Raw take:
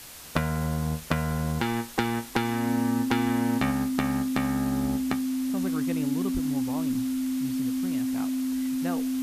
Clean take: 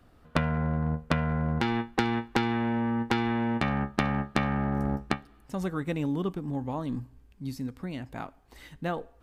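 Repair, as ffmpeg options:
ffmpeg -i in.wav -filter_complex "[0:a]bandreject=frequency=260:width=30,asplit=3[link_01][link_02][link_03];[link_01]afade=type=out:start_time=6.33:duration=0.02[link_04];[link_02]highpass=frequency=140:width=0.5412,highpass=frequency=140:width=1.3066,afade=type=in:start_time=6.33:duration=0.02,afade=type=out:start_time=6.45:duration=0.02[link_05];[link_03]afade=type=in:start_time=6.45:duration=0.02[link_06];[link_04][link_05][link_06]amix=inputs=3:normalize=0,afwtdn=0.0071,asetnsamples=nb_out_samples=441:pad=0,asendcmd='3.71 volume volume 3dB',volume=0dB" out.wav

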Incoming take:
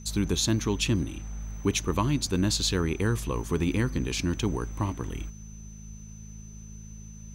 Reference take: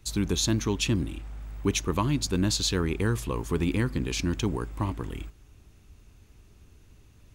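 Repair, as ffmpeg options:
ffmpeg -i in.wav -af "bandreject=frequency=53.3:width_type=h:width=4,bandreject=frequency=106.6:width_type=h:width=4,bandreject=frequency=159.9:width_type=h:width=4,bandreject=frequency=213.2:width_type=h:width=4,bandreject=frequency=6100:width=30" out.wav

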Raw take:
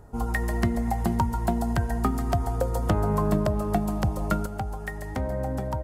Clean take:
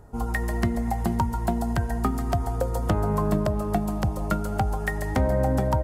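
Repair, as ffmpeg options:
ffmpeg -i in.wav -af "asetnsamples=nb_out_samples=441:pad=0,asendcmd='4.46 volume volume 6.5dB',volume=0dB" out.wav

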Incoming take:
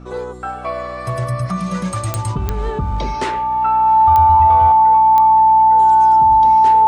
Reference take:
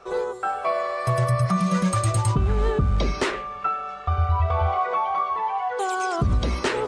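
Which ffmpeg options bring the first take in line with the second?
ffmpeg -i in.wav -af "adeclick=threshold=4,bandreject=frequency=62:width_type=h:width=4,bandreject=frequency=124:width_type=h:width=4,bandreject=frequency=186:width_type=h:width=4,bandreject=frequency=248:width_type=h:width=4,bandreject=frequency=310:width_type=h:width=4,bandreject=frequency=880:width=30,asetnsamples=nb_out_samples=441:pad=0,asendcmd='4.72 volume volume 9dB',volume=0dB" out.wav

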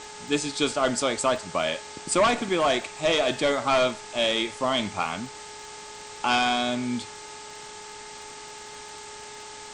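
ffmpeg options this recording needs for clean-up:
ffmpeg -i in.wav -af "adeclick=threshold=4,bandreject=frequency=419.6:width_type=h:width=4,bandreject=frequency=839.2:width_type=h:width=4,bandreject=frequency=1258.8:width_type=h:width=4,bandreject=frequency=1678.4:width_type=h:width=4,bandreject=frequency=2098:width_type=h:width=4,bandreject=frequency=880:width=30,afftdn=noise_reduction=29:noise_floor=-42" out.wav

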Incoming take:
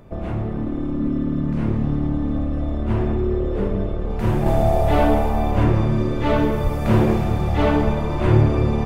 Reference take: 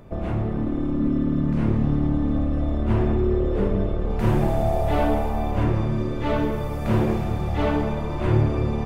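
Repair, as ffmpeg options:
ffmpeg -i in.wav -filter_complex "[0:a]asplit=3[link_01][link_02][link_03];[link_01]afade=type=out:start_time=4.24:duration=0.02[link_04];[link_02]highpass=frequency=140:width=0.5412,highpass=frequency=140:width=1.3066,afade=type=in:start_time=4.24:duration=0.02,afade=type=out:start_time=4.36:duration=0.02[link_05];[link_03]afade=type=in:start_time=4.36:duration=0.02[link_06];[link_04][link_05][link_06]amix=inputs=3:normalize=0,asplit=3[link_07][link_08][link_09];[link_07]afade=type=out:start_time=6.63:duration=0.02[link_10];[link_08]highpass=frequency=140:width=0.5412,highpass=frequency=140:width=1.3066,afade=type=in:start_time=6.63:duration=0.02,afade=type=out:start_time=6.75:duration=0.02[link_11];[link_09]afade=type=in:start_time=6.75:duration=0.02[link_12];[link_10][link_11][link_12]amix=inputs=3:normalize=0,asplit=3[link_13][link_14][link_15];[link_13]afade=type=out:start_time=7.84:duration=0.02[link_16];[link_14]highpass=frequency=140:width=0.5412,highpass=frequency=140:width=1.3066,afade=type=in:start_time=7.84:duration=0.02,afade=type=out:start_time=7.96:duration=0.02[link_17];[link_15]afade=type=in:start_time=7.96:duration=0.02[link_18];[link_16][link_17][link_18]amix=inputs=3:normalize=0,asetnsamples=nb_out_samples=441:pad=0,asendcmd='4.46 volume volume -4.5dB',volume=0dB" out.wav

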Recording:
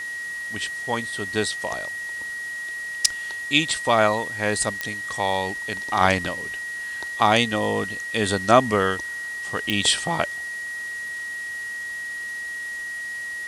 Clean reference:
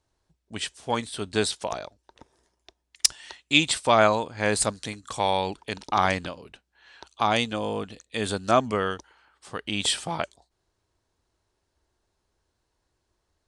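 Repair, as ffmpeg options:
ffmpeg -i in.wav -af "adeclick=threshold=4,bandreject=frequency=1900:width=30,afwtdn=0.0071,asetnsamples=nb_out_samples=441:pad=0,asendcmd='6.01 volume volume -5dB',volume=0dB" out.wav

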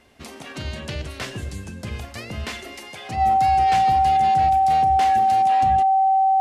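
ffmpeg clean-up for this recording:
ffmpeg -i in.wav -af "bandreject=frequency=770:width=30" out.wav

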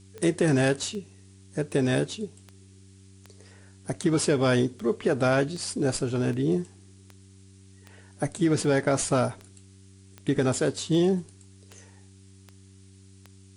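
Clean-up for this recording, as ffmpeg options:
ffmpeg -i in.wav -af "adeclick=threshold=4,bandreject=frequency=96.3:width_type=h:width=4,bandreject=frequency=192.6:width_type=h:width=4,bandreject=frequency=288.9:width_type=h:width=4,bandreject=frequency=385.2:width_type=h:width=4,agate=range=-21dB:threshold=-44dB" out.wav

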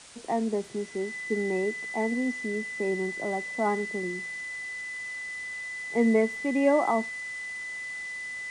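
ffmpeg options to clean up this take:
ffmpeg -i in.wav -af "bandreject=frequency=2000:width=30,afftdn=noise_reduction=30:noise_floor=-37" out.wav

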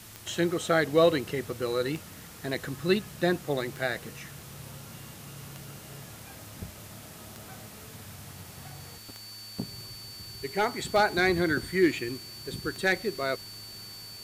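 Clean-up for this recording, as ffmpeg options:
ffmpeg -i in.wav -af "adeclick=threshold=4,bandreject=frequency=108.2:width_type=h:width=4,bandreject=frequency=216.4:width_type=h:width=4,bandreject=frequency=324.6:width_type=h:width=4,bandreject=frequency=4500:width=30,afwtdn=0.004" out.wav

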